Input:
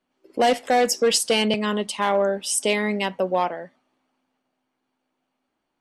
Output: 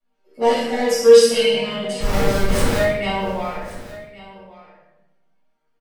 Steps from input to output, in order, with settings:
resonators tuned to a chord D#3 major, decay 0.52 s
0:02.00–0:02.78: comparator with hysteresis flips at −38 dBFS
pitch vibrato 6.4 Hz 20 cents
single-tap delay 1,126 ms −18 dB
rectangular room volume 320 cubic metres, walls mixed, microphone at 6.8 metres
level +4.5 dB

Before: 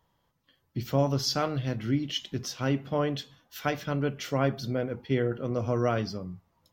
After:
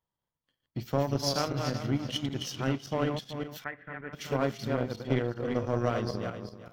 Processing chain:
feedback delay that plays each chunk backwards 191 ms, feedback 51%, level −4.5 dB
downward compressor 1.5 to 1, threshold −30 dBFS, peak gain reduction 4.5 dB
power curve on the samples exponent 1.4
0:03.64–0:04.13: transistor ladder low-pass 2,000 Hz, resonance 75%
level +3.5 dB

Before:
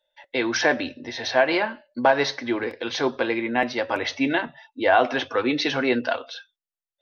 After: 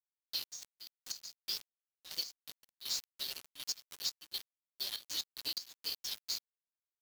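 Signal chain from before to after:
phase-vocoder pitch shift without resampling +2.5 semitones
inverse Chebyshev high-pass filter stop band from 2,300 Hz, stop band 40 dB
downward compressor 20 to 1, threshold −47 dBFS, peak gain reduction 19 dB
centre clipping without the shift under −50 dBFS
gate pattern "xxxx.x.xx..x" 121 BPM −12 dB
level +14 dB

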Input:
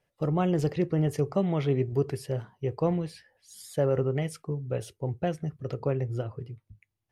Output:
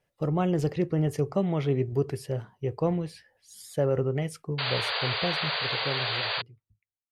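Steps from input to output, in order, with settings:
fade-out on the ending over 2.32 s
sound drawn into the spectrogram noise, 0:04.58–0:06.42, 400–4,800 Hz −30 dBFS

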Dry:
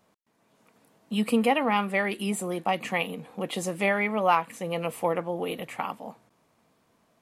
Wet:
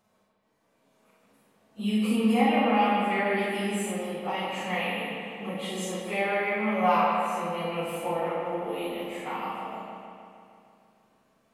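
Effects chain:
time stretch by phase vocoder 1.6×
bucket-brigade delay 154 ms, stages 4,096, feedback 66%, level −4 dB
four-comb reverb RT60 0.57 s, combs from 29 ms, DRR −1.5 dB
level −4 dB

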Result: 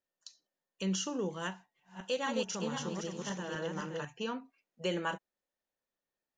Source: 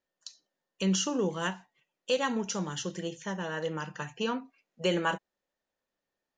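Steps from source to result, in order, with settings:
0:01.49–0:04.05: feedback delay that plays each chunk backwards 258 ms, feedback 47%, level −1.5 dB
level −6 dB

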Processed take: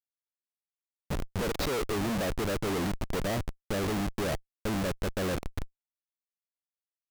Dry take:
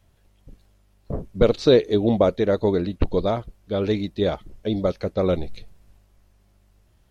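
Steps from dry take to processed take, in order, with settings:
steady tone 570 Hz −45 dBFS
comparator with hysteresis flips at −31 dBFS
level −6 dB

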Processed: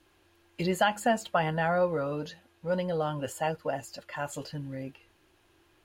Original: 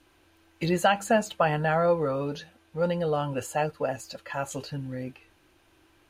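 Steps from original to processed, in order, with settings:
wrong playback speed 24 fps film run at 25 fps
level −3 dB

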